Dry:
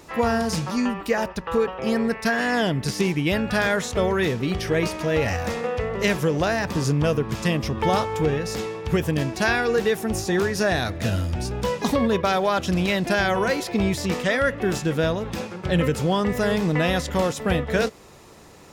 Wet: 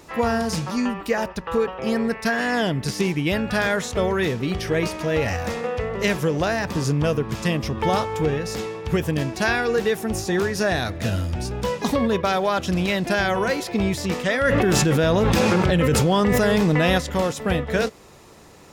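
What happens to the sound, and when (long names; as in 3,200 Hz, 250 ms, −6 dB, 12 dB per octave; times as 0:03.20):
0:14.45–0:16.98: envelope flattener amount 100%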